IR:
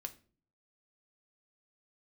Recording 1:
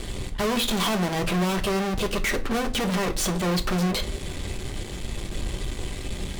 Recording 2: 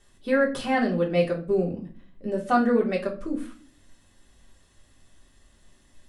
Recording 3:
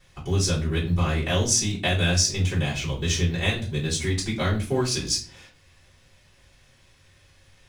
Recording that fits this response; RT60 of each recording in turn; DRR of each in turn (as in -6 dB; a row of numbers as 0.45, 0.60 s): 1; 0.45, 0.40, 0.40 s; 6.0, -3.0, -12.0 dB